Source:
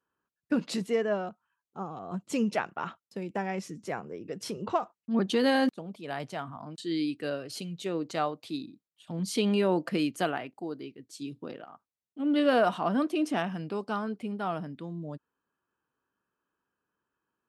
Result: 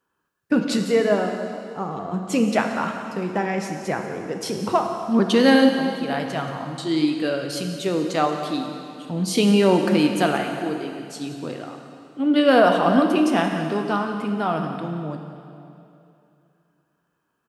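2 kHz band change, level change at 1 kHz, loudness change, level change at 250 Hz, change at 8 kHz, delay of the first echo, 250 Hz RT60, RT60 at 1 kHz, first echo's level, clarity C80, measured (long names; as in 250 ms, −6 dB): +9.5 dB, +9.5 dB, +9.5 dB, +9.5 dB, +9.5 dB, 178 ms, 2.7 s, 2.7 s, −15.0 dB, 6.0 dB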